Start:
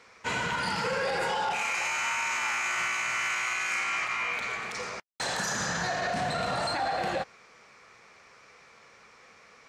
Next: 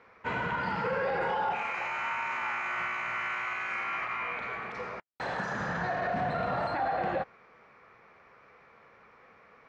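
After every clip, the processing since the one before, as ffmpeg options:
-af "lowpass=1800"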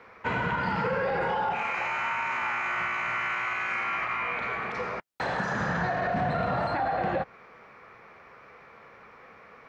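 -filter_complex "[0:a]acrossover=split=230[s0][s1];[s1]acompressor=threshold=0.0178:ratio=2[s2];[s0][s2]amix=inputs=2:normalize=0,volume=2.11"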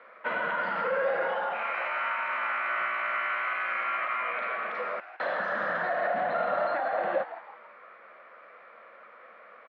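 -filter_complex "[0:a]highpass=f=270:w=0.5412,highpass=f=270:w=1.3066,equalizer=f=280:t=q:w=4:g=-8,equalizer=f=410:t=q:w=4:g=-10,equalizer=f=590:t=q:w=4:g=8,equalizer=f=850:t=q:w=4:g=-8,equalizer=f=1300:t=q:w=4:g=3,equalizer=f=2500:t=q:w=4:g=-5,lowpass=f=3400:w=0.5412,lowpass=f=3400:w=1.3066,asplit=5[s0][s1][s2][s3][s4];[s1]adelay=163,afreqshift=130,volume=0.2[s5];[s2]adelay=326,afreqshift=260,volume=0.0794[s6];[s3]adelay=489,afreqshift=390,volume=0.032[s7];[s4]adelay=652,afreqshift=520,volume=0.0127[s8];[s0][s5][s6][s7][s8]amix=inputs=5:normalize=0"

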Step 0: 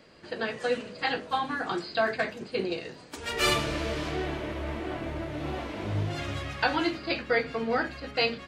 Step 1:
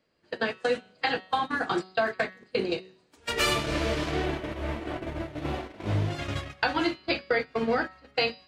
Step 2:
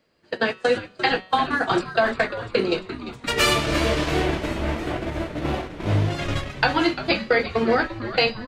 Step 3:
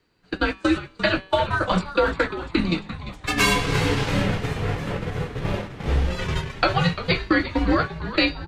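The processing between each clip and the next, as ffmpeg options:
-af "acompressor=threshold=0.0355:ratio=4,agate=range=0.0631:threshold=0.0224:ratio=16:detection=peak,bandreject=f=187:t=h:w=4,bandreject=f=374:t=h:w=4,bandreject=f=561:t=h:w=4,bandreject=f=748:t=h:w=4,bandreject=f=935:t=h:w=4,bandreject=f=1122:t=h:w=4,bandreject=f=1309:t=h:w=4,bandreject=f=1496:t=h:w=4,bandreject=f=1683:t=h:w=4,bandreject=f=1870:t=h:w=4,bandreject=f=2057:t=h:w=4,bandreject=f=2244:t=h:w=4,bandreject=f=2431:t=h:w=4,bandreject=f=2618:t=h:w=4,bandreject=f=2805:t=h:w=4,bandreject=f=2992:t=h:w=4,bandreject=f=3179:t=h:w=4,bandreject=f=3366:t=h:w=4,bandreject=f=3553:t=h:w=4,bandreject=f=3740:t=h:w=4,bandreject=f=3927:t=h:w=4,bandreject=f=4114:t=h:w=4,bandreject=f=4301:t=h:w=4,bandreject=f=4488:t=h:w=4,bandreject=f=4675:t=h:w=4,bandreject=f=4862:t=h:w=4,bandreject=f=5049:t=h:w=4,volume=2.11"
-filter_complex "[0:a]asplit=9[s0][s1][s2][s3][s4][s5][s6][s7][s8];[s1]adelay=347,afreqshift=-120,volume=0.237[s9];[s2]adelay=694,afreqshift=-240,volume=0.151[s10];[s3]adelay=1041,afreqshift=-360,volume=0.0966[s11];[s4]adelay=1388,afreqshift=-480,volume=0.0624[s12];[s5]adelay=1735,afreqshift=-600,volume=0.0398[s13];[s6]adelay=2082,afreqshift=-720,volume=0.0254[s14];[s7]adelay=2429,afreqshift=-840,volume=0.0162[s15];[s8]adelay=2776,afreqshift=-960,volume=0.0105[s16];[s0][s9][s10][s11][s12][s13][s14][s15][s16]amix=inputs=9:normalize=0,volume=2"
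-af "afreqshift=-170"

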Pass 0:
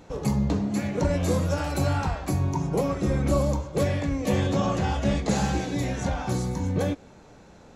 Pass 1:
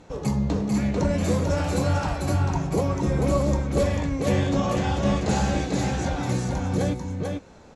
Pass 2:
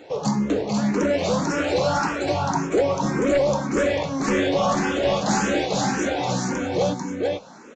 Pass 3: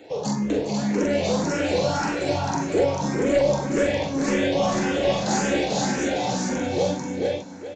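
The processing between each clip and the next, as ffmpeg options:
-filter_complex "[0:a]lowpass=f=11000:w=0.5412,lowpass=f=11000:w=1.3066,asplit=2[s0][s1];[s1]aecho=0:1:443:0.668[s2];[s0][s2]amix=inputs=2:normalize=0"
-filter_complex "[0:a]highpass=250,aresample=16000,aeval=exprs='0.237*sin(PI/2*2*val(0)/0.237)':c=same,aresample=44100,asplit=2[s0][s1];[s1]afreqshift=1.8[s2];[s0][s2]amix=inputs=2:normalize=1"
-filter_complex "[0:a]aecho=1:1:44|409:0.596|0.299,acrossover=split=250|3500[s0][s1][s2];[s0]alimiter=limit=0.0708:level=0:latency=1[s3];[s3][s1][s2]amix=inputs=3:normalize=0,equalizer=f=1200:t=o:w=0.52:g=-8,volume=0.841"

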